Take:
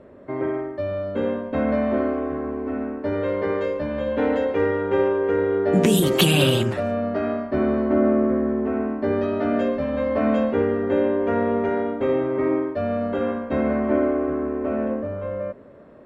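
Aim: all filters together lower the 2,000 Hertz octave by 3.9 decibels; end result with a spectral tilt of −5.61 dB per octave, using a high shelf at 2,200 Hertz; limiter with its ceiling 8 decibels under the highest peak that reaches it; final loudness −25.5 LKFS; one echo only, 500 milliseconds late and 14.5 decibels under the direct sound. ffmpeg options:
ffmpeg -i in.wav -af "equalizer=frequency=2000:width_type=o:gain=-3.5,highshelf=frequency=2200:gain=-3,alimiter=limit=-13dB:level=0:latency=1,aecho=1:1:500:0.188,volume=-2dB" out.wav

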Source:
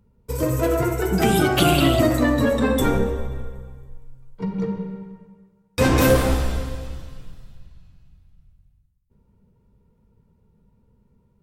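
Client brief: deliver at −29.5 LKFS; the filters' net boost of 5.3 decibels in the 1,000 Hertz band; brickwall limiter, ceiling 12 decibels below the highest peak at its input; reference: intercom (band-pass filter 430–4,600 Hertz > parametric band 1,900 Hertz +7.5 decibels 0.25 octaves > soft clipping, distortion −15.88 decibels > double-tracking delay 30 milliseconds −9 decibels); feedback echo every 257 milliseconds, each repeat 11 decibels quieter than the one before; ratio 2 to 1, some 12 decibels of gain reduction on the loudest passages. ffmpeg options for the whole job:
ffmpeg -i in.wav -filter_complex "[0:a]equalizer=frequency=1000:width_type=o:gain=7.5,acompressor=threshold=-34dB:ratio=2,alimiter=level_in=2dB:limit=-24dB:level=0:latency=1,volume=-2dB,highpass=430,lowpass=4600,equalizer=frequency=1900:width_type=o:width=0.25:gain=7.5,aecho=1:1:257|514|771:0.282|0.0789|0.0221,asoftclip=threshold=-32.5dB,asplit=2[link_01][link_02];[link_02]adelay=30,volume=-9dB[link_03];[link_01][link_03]amix=inputs=2:normalize=0,volume=10.5dB" out.wav

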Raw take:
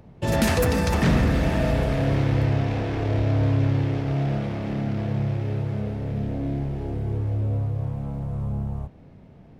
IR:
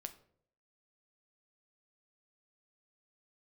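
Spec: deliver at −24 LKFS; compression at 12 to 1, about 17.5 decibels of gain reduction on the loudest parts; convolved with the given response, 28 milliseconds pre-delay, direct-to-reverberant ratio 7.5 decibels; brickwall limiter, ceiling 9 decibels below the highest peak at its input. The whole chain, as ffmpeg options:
-filter_complex "[0:a]acompressor=threshold=-35dB:ratio=12,alimiter=level_in=9.5dB:limit=-24dB:level=0:latency=1,volume=-9.5dB,asplit=2[link_01][link_02];[1:a]atrim=start_sample=2205,adelay=28[link_03];[link_02][link_03]afir=irnorm=-1:irlink=0,volume=-3.5dB[link_04];[link_01][link_04]amix=inputs=2:normalize=0,volume=15.5dB"

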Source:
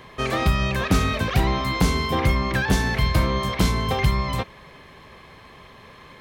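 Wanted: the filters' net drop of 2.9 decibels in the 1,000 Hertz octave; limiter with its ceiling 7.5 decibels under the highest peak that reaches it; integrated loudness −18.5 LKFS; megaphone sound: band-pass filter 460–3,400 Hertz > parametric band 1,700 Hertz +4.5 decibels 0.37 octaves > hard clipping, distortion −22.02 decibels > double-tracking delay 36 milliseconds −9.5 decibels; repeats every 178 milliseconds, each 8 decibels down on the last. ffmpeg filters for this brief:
ffmpeg -i in.wav -filter_complex "[0:a]equalizer=frequency=1000:width_type=o:gain=-3.5,alimiter=limit=-17dB:level=0:latency=1,highpass=460,lowpass=3400,equalizer=frequency=1700:width_type=o:width=0.37:gain=4.5,aecho=1:1:178|356|534|712|890:0.398|0.159|0.0637|0.0255|0.0102,asoftclip=type=hard:threshold=-22dB,asplit=2[link_01][link_02];[link_02]adelay=36,volume=-9.5dB[link_03];[link_01][link_03]amix=inputs=2:normalize=0,volume=10dB" out.wav

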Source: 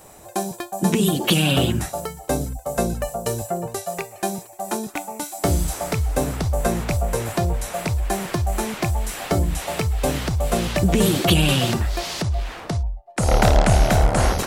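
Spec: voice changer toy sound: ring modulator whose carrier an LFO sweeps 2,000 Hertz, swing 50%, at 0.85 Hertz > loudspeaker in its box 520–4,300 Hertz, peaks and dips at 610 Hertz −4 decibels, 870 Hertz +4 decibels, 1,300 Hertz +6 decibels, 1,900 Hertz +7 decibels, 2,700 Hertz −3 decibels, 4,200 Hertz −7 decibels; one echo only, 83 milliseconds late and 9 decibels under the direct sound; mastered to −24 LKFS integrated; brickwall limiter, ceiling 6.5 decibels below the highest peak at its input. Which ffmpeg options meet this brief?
ffmpeg -i in.wav -af "alimiter=limit=-9.5dB:level=0:latency=1,aecho=1:1:83:0.355,aeval=exprs='val(0)*sin(2*PI*2000*n/s+2000*0.5/0.85*sin(2*PI*0.85*n/s))':channel_layout=same,highpass=520,equalizer=frequency=610:width_type=q:width=4:gain=-4,equalizer=frequency=870:width_type=q:width=4:gain=4,equalizer=frequency=1300:width_type=q:width=4:gain=6,equalizer=frequency=1900:width_type=q:width=4:gain=7,equalizer=frequency=2700:width_type=q:width=4:gain=-3,equalizer=frequency=4200:width_type=q:width=4:gain=-7,lowpass=frequency=4300:width=0.5412,lowpass=frequency=4300:width=1.3066,volume=-4dB" out.wav

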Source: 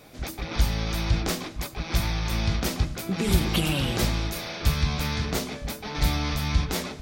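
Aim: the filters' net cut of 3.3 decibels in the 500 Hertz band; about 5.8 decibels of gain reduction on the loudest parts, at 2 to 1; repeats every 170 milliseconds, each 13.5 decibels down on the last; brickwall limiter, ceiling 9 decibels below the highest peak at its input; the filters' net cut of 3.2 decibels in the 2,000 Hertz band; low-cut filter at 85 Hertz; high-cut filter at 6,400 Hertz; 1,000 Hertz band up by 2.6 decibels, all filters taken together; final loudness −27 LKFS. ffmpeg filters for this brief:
ffmpeg -i in.wav -af "highpass=85,lowpass=6400,equalizer=frequency=500:width_type=o:gain=-6,equalizer=frequency=1000:width_type=o:gain=6.5,equalizer=frequency=2000:width_type=o:gain=-5.5,acompressor=threshold=-32dB:ratio=2,alimiter=level_in=2dB:limit=-24dB:level=0:latency=1,volume=-2dB,aecho=1:1:170|340:0.211|0.0444,volume=9dB" out.wav

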